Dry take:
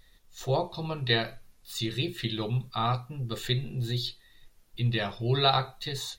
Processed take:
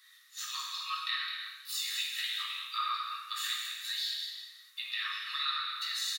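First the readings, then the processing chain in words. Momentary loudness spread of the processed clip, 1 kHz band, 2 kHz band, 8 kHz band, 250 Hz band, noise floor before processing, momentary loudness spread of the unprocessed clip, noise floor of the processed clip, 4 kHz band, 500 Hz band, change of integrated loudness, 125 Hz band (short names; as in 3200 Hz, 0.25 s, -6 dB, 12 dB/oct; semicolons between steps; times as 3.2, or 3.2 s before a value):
7 LU, -5.5 dB, -1.0 dB, +4.5 dB, under -40 dB, -60 dBFS, 11 LU, -59 dBFS, -0.5 dB, under -40 dB, -4.5 dB, under -40 dB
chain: Chebyshev high-pass 1100 Hz, order 8; compressor 10:1, threshold -38 dBFS, peak gain reduction 17 dB; on a send: echo 0.211 s -9.5 dB; on the sum: non-linear reverb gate 0.45 s falling, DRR -3.5 dB; gain +3 dB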